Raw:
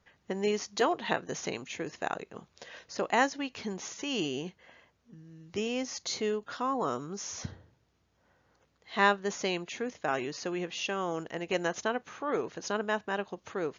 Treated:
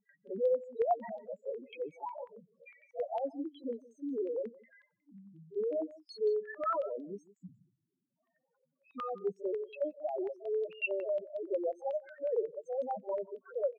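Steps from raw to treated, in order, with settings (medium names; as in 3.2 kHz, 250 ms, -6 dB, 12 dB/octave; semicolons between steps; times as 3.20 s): pitch shift switched off and on +3.5 st, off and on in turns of 381 ms; high-pass 150 Hz 24 dB/octave; dynamic bell 560 Hz, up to +6 dB, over -44 dBFS, Q 1.6; in parallel at -2.5 dB: level held to a coarse grid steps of 13 dB; on the sum: peak limiter -16 dBFS, peak gain reduction 11.5 dB; pre-echo 46 ms -17 dB; loudest bins only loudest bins 2; on a send: delay 160 ms -20 dB; on the sum: careless resampling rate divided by 3×, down filtered, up hold; step-sequenced low-pass 11 Hz 870–3700 Hz; trim -3 dB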